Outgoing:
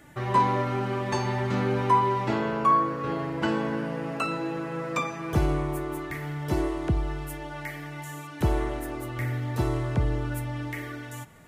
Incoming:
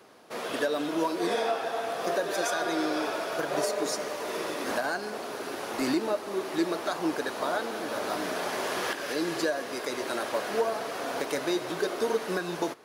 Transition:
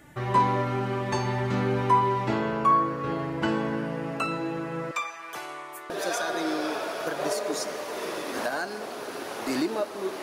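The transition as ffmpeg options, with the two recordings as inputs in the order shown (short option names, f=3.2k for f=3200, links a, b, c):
-filter_complex "[0:a]asettb=1/sr,asplit=3[a][b][c];[a]atrim=end=4.914[d];[b]atrim=start=4.91:end=5.9,asetpts=PTS-STARTPTS,afade=t=in:d=0.004:c=qsin,afade=t=out:st=0.986:d=0.004:c=qsin,highpass=980[e];[c]atrim=start=5.896[f];[d][e]acrossfade=d=0.004:c1=hsin:c2=qsin[g];[g][f]acrossfade=d=0.004:c1=qsin:c2=hsin,apad=whole_dur=10.22,atrim=end=10.22,atrim=end=5.902[h];[1:a]atrim=start=2.218:end=6.54[i];[h][i]acrossfade=d=0.004:c1=hsin:c2=hsin"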